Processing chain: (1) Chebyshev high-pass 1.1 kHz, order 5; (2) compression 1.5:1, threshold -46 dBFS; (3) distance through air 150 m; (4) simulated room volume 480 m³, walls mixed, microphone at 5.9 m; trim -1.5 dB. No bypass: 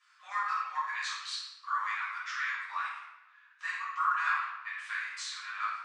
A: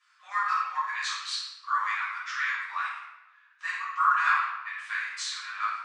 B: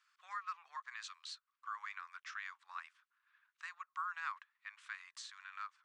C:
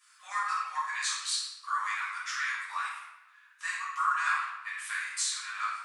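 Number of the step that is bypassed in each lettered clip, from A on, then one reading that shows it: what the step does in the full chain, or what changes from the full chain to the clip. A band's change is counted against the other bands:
2, mean gain reduction 3.5 dB; 4, echo-to-direct 10.0 dB to none; 3, 8 kHz band +11.5 dB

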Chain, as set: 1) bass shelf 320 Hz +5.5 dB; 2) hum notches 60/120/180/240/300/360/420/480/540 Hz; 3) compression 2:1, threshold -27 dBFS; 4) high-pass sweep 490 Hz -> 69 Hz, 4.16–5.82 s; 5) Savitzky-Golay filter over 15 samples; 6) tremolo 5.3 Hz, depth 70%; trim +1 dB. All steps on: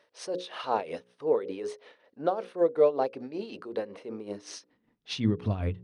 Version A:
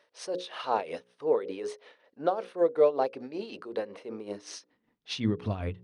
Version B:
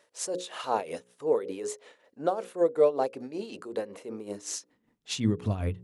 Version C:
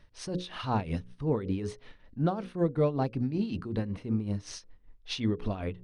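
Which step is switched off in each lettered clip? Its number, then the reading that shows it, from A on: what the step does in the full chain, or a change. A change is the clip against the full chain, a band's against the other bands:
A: 1, 125 Hz band -3.5 dB; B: 5, momentary loudness spread change -2 LU; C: 4, loudness change -1.0 LU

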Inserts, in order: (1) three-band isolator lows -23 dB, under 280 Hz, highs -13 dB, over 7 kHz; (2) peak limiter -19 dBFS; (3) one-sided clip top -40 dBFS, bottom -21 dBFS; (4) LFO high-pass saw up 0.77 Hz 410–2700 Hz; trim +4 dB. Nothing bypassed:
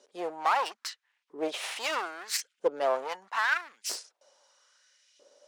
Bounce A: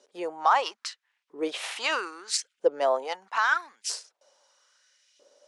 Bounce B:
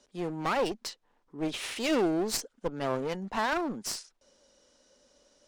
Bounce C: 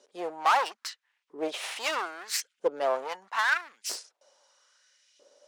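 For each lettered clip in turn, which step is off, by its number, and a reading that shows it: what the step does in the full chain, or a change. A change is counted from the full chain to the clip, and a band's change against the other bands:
3, distortion -7 dB; 4, 250 Hz band +13.5 dB; 2, loudness change +1.5 LU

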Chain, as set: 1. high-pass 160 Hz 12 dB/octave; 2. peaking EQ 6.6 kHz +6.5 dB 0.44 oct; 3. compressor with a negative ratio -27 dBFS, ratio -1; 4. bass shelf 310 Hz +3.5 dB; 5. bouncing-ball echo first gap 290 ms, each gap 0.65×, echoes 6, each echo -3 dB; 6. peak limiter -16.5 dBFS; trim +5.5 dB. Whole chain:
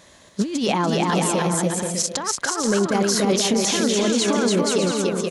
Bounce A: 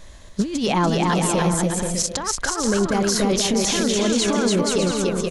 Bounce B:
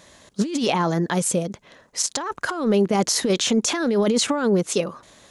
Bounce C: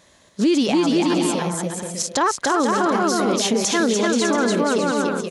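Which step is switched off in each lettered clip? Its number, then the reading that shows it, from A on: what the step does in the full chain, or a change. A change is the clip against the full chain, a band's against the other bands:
1, 125 Hz band +2.0 dB; 5, crest factor change +1.5 dB; 3, 125 Hz band -5.5 dB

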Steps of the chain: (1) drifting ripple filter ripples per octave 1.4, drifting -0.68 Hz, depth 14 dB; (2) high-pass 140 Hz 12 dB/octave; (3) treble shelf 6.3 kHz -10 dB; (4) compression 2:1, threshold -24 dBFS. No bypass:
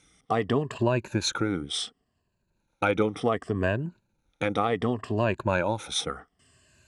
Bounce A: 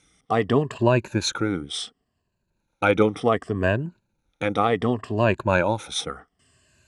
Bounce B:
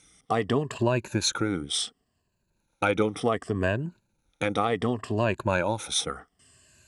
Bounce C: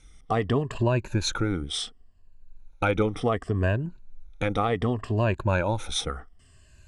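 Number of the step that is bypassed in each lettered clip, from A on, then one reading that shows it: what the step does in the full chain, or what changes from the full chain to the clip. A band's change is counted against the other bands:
4, mean gain reduction 3.0 dB; 3, 8 kHz band +4.5 dB; 2, 125 Hz band +5.0 dB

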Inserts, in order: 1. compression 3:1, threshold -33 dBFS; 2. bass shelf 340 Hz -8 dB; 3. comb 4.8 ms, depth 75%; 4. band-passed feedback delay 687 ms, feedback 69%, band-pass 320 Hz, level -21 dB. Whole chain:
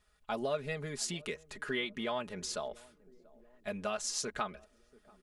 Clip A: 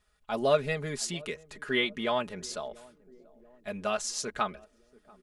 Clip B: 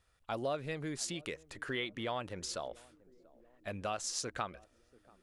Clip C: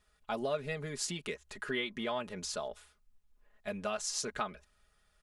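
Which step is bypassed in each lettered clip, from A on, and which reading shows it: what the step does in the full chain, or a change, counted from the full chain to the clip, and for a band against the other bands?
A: 1, momentary loudness spread change +6 LU; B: 3, 125 Hz band +2.5 dB; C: 4, echo-to-direct -27.0 dB to none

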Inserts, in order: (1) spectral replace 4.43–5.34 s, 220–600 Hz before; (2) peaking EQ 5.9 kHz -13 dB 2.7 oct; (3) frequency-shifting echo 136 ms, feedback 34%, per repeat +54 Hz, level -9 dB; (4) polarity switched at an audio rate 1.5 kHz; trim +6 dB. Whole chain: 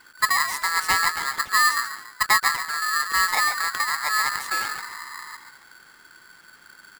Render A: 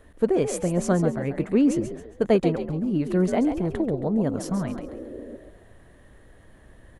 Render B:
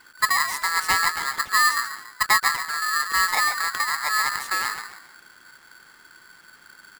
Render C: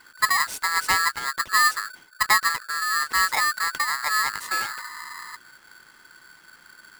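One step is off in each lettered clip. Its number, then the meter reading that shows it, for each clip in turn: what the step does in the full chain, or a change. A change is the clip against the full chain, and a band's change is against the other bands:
4, loudness change -2.5 LU; 1, momentary loudness spread change -6 LU; 3, momentary loudness spread change +2 LU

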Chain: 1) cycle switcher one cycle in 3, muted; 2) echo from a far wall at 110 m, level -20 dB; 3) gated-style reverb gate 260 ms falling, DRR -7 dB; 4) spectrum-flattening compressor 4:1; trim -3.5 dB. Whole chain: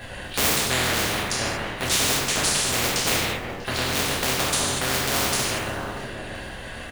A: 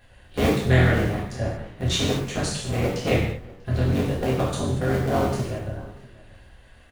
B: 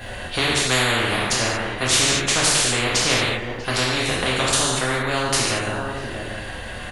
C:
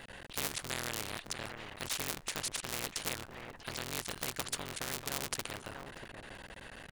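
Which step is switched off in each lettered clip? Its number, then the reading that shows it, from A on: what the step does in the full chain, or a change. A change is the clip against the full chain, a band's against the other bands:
4, 125 Hz band +14.0 dB; 1, crest factor change -1.5 dB; 3, crest factor change +8.5 dB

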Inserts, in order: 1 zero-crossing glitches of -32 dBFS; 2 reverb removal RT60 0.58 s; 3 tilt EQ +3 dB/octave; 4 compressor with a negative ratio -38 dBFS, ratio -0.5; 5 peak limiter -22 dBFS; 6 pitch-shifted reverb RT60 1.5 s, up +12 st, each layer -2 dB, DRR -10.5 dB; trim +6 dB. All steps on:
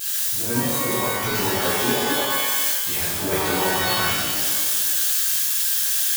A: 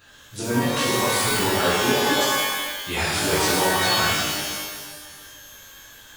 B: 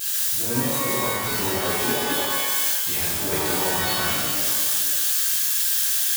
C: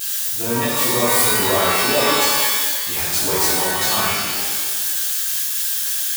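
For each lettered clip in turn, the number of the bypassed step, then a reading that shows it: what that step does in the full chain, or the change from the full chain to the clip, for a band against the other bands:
1, distortion -10 dB; 2, 8 kHz band +2.0 dB; 4, 125 Hz band -3.0 dB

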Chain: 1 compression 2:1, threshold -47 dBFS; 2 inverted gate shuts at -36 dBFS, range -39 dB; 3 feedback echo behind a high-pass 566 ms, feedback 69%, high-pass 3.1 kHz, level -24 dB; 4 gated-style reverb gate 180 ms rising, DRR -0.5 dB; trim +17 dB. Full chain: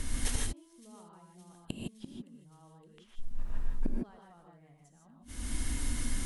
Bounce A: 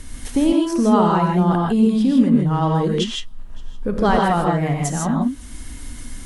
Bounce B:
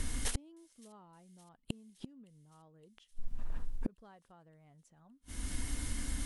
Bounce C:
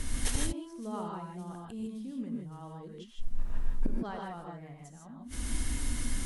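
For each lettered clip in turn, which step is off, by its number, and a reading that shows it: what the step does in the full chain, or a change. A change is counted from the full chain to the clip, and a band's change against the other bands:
2, momentary loudness spread change -5 LU; 4, crest factor change +3.5 dB; 1, mean gain reduction 10.5 dB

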